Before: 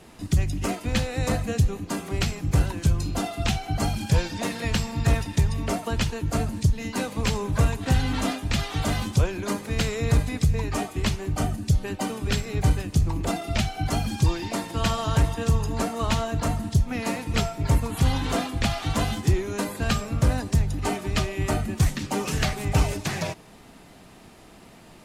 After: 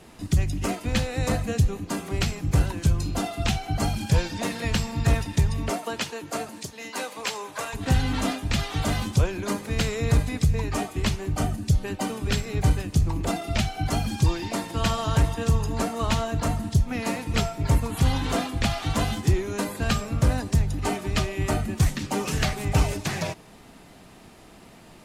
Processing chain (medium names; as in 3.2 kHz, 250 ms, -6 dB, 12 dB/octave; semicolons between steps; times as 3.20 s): 5.69–7.73 s: high-pass 260 Hz -> 680 Hz 12 dB/octave